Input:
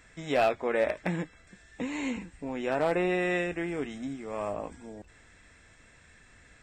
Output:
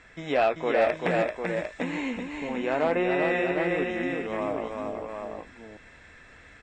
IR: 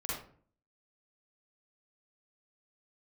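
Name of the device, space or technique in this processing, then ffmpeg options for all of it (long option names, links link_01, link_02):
parallel compression: -filter_complex "[0:a]asplit=2[link_01][link_02];[link_02]acompressor=threshold=-38dB:ratio=6,volume=-3dB[link_03];[link_01][link_03]amix=inputs=2:normalize=0,asettb=1/sr,asplit=3[link_04][link_05][link_06];[link_04]atrim=end=0.814[link_07];[link_05]atrim=start=0.81:end=1.84,asetpts=PTS-STARTPTS,afade=type=in:duration=0.004:curve=qsin,afade=type=out:start_time=1.026:duration=0.004:curve=qsin,aemphasis=mode=production:type=50kf[link_08];[link_06]atrim=start=1.836[link_09];[link_07][link_08]acrossfade=duration=0.004:curve1=hsin:curve2=qsin[link_10];[link_10][link_09]acrossfade=duration=0.004:curve1=qsin:curve2=hsin,lowpass=6200,bass=frequency=250:gain=-5,treble=frequency=4000:gain=-6,aecho=1:1:388|751:0.631|0.501,volume=1dB"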